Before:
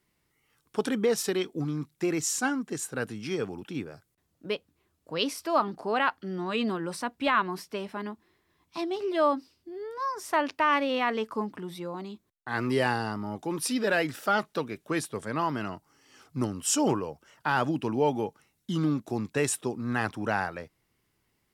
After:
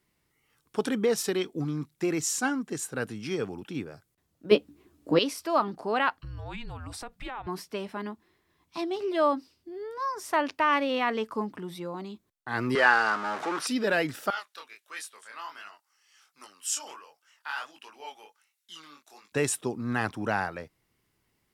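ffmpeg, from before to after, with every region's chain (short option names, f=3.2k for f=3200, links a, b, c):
-filter_complex "[0:a]asettb=1/sr,asplit=3[a][b][c];[a]atrim=end=4.514[d];[b]atrim=start=4.51:end=5.19,asetpts=PTS-STARTPTS,afade=t=in:d=0.004:c=qsin,afade=t=out:st=0.676:d=0.004:c=qsin,equalizer=f=290:w=1.5:g=14,acontrast=32,asplit=2[e][f];[f]adelay=14,volume=-6dB[g];[e][g]amix=inputs=2:normalize=0,atrim=end_sample=29988[h];[c]atrim=start=5.186[i];[d][h]acrossfade=d=0.004:c1=hsin:c2=qsin[j];[j][i]acrossfade=d=0.004:c1=qsin:c2=hsin,asettb=1/sr,asplit=3[k][l][m];[k]atrim=end=6.194[n];[l]atrim=start=6.19:end=7.47,asetpts=PTS-STARTPTS,afade=t=in:d=0.004:c=qsin,afade=t=out:st=1.276:d=0.004:c=qsin,asubboost=boost=10:cutoff=100,afreqshift=-250,acompressor=threshold=-36dB:ratio=4:attack=3.2:release=140:knee=1:detection=peak[o];[m]atrim=start=7.466[p];[n][o]acrossfade=d=0.004:c1=hsin:c2=qsin[q];[q][p]acrossfade=d=0.004:c1=qsin:c2=hsin,asettb=1/sr,asplit=3[r][s][t];[r]atrim=end=12.754[u];[s]atrim=start=12.75:end=13.67,asetpts=PTS-STARTPTS,afade=t=in:d=0.004:c=qsin,afade=t=out:st=0.916:d=0.004:c=qsin,aeval=exprs='val(0)+0.5*0.0251*sgn(val(0))':c=same,highpass=410,lowpass=5.9k,equalizer=f=1.4k:t=o:w=0.84:g=12.5[v];[t]atrim=start=13.666[w];[u][v]acrossfade=d=0.004:c1=hsin:c2=qsin[x];[x][w]acrossfade=d=0.004:c1=qsin:c2=hsin,asettb=1/sr,asplit=3[y][z][aa];[y]atrim=end=14.304[ab];[z]atrim=start=14.3:end=19.32,asetpts=PTS-STARTPTS,afade=t=in:d=0.004:c=qsin,afade=t=out:st=5.016:d=0.004:c=qsin,highpass=1.5k,flanger=delay=19.5:depth=8:speed=1.4[ac];[aa]atrim=start=19.316[ad];[ab][ac]acrossfade=d=0.004:c1=hsin:c2=qsin[ae];[ae][ad]acrossfade=d=0.004:c1=qsin:c2=hsin"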